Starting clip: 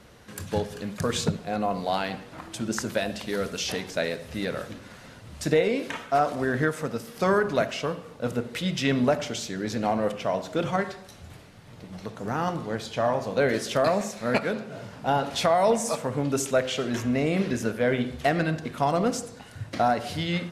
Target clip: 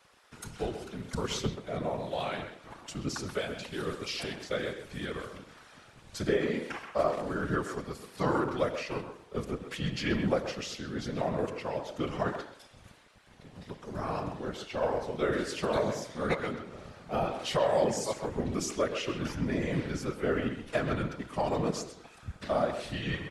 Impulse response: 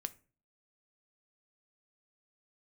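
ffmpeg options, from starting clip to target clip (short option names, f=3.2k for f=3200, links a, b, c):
-filter_complex "[0:a]afftfilt=real='hypot(re,im)*cos(2*PI*random(0))':imag='hypot(re,im)*sin(2*PI*random(1))':win_size=512:overlap=0.75,asetrate=38808,aresample=44100,acrossover=split=610|1300[a][b][c];[a]aeval=exprs='sgn(val(0))*max(abs(val(0))-0.00141,0)':c=same[d];[d][b][c]amix=inputs=3:normalize=0,asplit=2[e][f];[f]adelay=130,highpass=300,lowpass=3.4k,asoftclip=type=hard:threshold=-23.5dB,volume=-8dB[g];[e][g]amix=inputs=2:normalize=0"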